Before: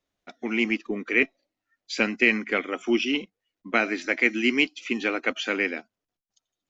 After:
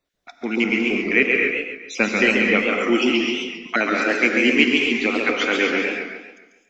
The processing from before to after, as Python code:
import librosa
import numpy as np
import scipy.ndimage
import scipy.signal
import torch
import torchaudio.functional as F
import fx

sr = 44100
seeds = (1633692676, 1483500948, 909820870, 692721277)

y = fx.spec_dropout(x, sr, seeds[0], share_pct=21)
y = fx.rev_gated(y, sr, seeds[1], gate_ms=280, shape='rising', drr_db=2.0)
y = fx.echo_warbled(y, sr, ms=138, feedback_pct=43, rate_hz=2.8, cents=143, wet_db=-4.5)
y = F.gain(torch.from_numpy(y), 4.0).numpy()